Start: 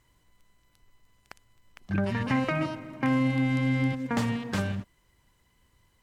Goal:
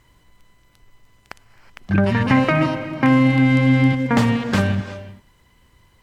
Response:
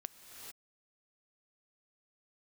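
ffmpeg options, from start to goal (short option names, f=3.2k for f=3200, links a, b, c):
-filter_complex "[0:a]asplit=2[a][b];[1:a]atrim=start_sample=2205,asetrate=52920,aresample=44100,lowpass=5.8k[c];[b][c]afir=irnorm=-1:irlink=0,volume=0.5dB[d];[a][d]amix=inputs=2:normalize=0,volume=7dB"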